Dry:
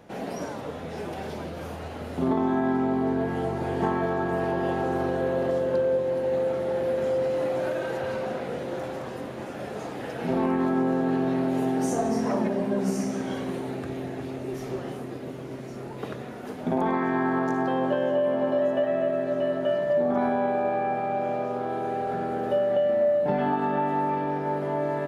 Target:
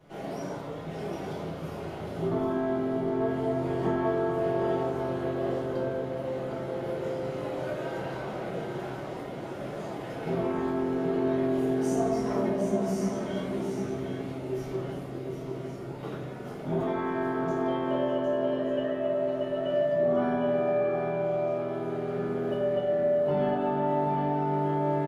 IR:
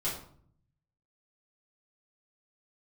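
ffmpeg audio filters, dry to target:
-filter_complex "[0:a]aecho=1:1:757:0.447[a];[1:a]atrim=start_sample=2205[b];[a][b]afir=irnorm=-1:irlink=0,volume=-8.5dB"

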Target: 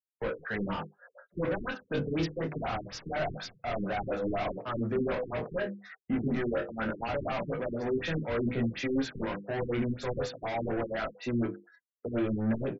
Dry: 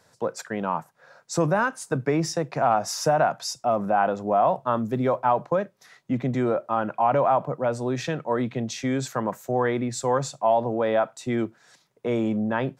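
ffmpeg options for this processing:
-filter_complex "[0:a]flanger=delay=16:depth=4.4:speed=0.7,agate=range=-33dB:threshold=-50dB:ratio=3:detection=peak,bandreject=f=50:t=h:w=6,bandreject=f=100:t=h:w=6,bandreject=f=150:t=h:w=6,bandreject=f=200:t=h:w=6,bandreject=f=250:t=h:w=6,bandreject=f=300:t=h:w=6,bandreject=f=350:t=h:w=6,bandreject=f=400:t=h:w=6,bandreject=f=450:t=h:w=6,bandreject=f=500:t=h:w=6,asplit=2[a][b];[b]highpass=f=720:p=1,volume=32dB,asoftclip=type=tanh:threshold=-10.5dB[c];[a][c]amix=inputs=2:normalize=0,lowpass=f=5.3k:p=1,volume=-6dB,asettb=1/sr,asplit=3[d][e][f];[d]atrim=end=1.694[g];[e]atrim=start=1.69:end=2.37,asetpts=PTS-STARTPTS,afade=t=in:d=0.004:c=qsin,afade=t=out:st=0.676:d=0.004:c=qsin,highshelf=f=2.5k:t=q:w=1.5:g=7.5[h];[f]atrim=start=2.366[i];[g][h]acrossfade=d=0.004:c1=hsin:c2=qsin[j];[j][i]acrossfade=d=0.004:c1=qsin:c2=hsin,asettb=1/sr,asplit=3[k][l][m];[k]atrim=end=6.194[n];[l]atrim=start=6.19:end=6.8,asetpts=PTS-STARTPTS,afade=t=in:d=0.004:c=qsin,afade=t=out:st=0.606:d=0.004:c=qsin,asplit=2[o][p];[p]adelay=22,volume=-5.5dB[q];[o][q]amix=inputs=2:normalize=0,atrim=end_sample=26901[r];[m]atrim=start=6.796[s];[n][r]acrossfade=d=0.004:c1=hsin:c2=qsin[t];[t][s]acrossfade=d=0.004:c1=qsin:c2=hsin,afftdn=nr=35:nf=-36,firequalizer=gain_entry='entry(140,0);entry(960,-14);entry(1500,-5);entry(9800,-22)':delay=0.05:min_phase=1,aecho=1:1:26|36:0.501|0.2,afftfilt=real='re*lt(b*sr/1024,390*pow(7700/390,0.5+0.5*sin(2*PI*4.1*pts/sr)))':imag='im*lt(b*sr/1024,390*pow(7700/390,0.5+0.5*sin(2*PI*4.1*pts/sr)))':win_size=1024:overlap=0.75,volume=-8dB"

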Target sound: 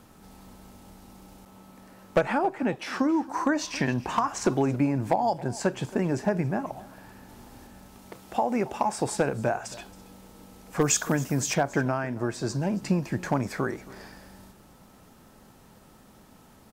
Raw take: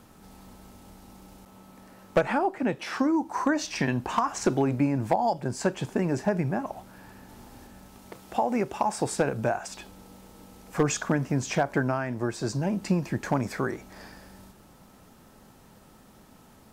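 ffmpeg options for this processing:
-filter_complex "[0:a]asettb=1/sr,asplit=3[a][b][c];[a]atrim=end=10.814[d];[b]atrim=start=10.81:end=11.54,asetpts=PTS-STARTPTS,afade=t=in:d=0.004:c=qsin,afade=t=out:st=0.726:d=0.004:c=qsin,aemphasis=mode=production:type=50fm[e];[c]atrim=start=11.536[f];[d][e]acrossfade=d=0.004:c1=hsin:c2=qsin[g];[g][f]acrossfade=d=0.004:c1=qsin:c2=hsin,aecho=1:1:274:0.106"

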